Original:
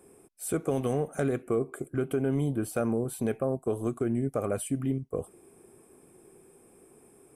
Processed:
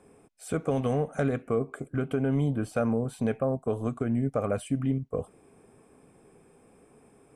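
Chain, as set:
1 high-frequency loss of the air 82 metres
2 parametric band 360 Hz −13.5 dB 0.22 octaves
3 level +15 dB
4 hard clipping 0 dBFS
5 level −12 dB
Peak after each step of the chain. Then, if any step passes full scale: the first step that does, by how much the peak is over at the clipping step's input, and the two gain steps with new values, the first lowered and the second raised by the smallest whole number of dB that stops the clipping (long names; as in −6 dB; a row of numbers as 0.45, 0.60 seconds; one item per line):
−17.5, −18.0, −3.0, −3.0, −15.0 dBFS
no step passes full scale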